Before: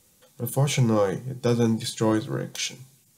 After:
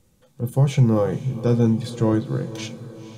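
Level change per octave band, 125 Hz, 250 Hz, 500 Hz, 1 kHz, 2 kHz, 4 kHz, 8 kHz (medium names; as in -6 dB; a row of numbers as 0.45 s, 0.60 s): +6.0 dB, +3.5 dB, +1.5 dB, -1.0 dB, -4.0 dB, -6.0 dB, -8.5 dB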